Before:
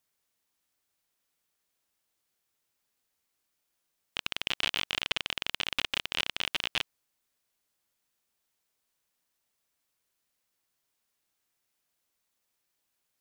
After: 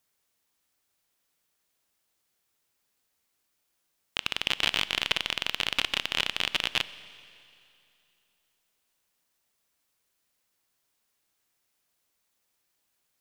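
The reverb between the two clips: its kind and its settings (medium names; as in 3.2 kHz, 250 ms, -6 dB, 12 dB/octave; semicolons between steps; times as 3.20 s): Schroeder reverb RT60 2.7 s, combs from 29 ms, DRR 16 dB; trim +3.5 dB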